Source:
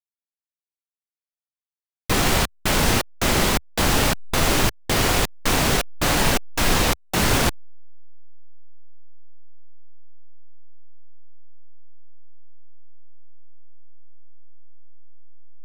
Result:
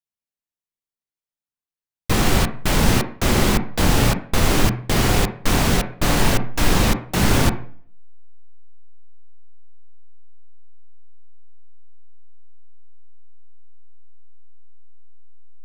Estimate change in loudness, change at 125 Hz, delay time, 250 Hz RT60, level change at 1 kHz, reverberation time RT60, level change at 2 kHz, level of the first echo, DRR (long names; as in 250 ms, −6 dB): +1.0 dB, +5.0 dB, no echo audible, 0.60 s, 0.0 dB, 0.50 s, −1.0 dB, no echo audible, 11.5 dB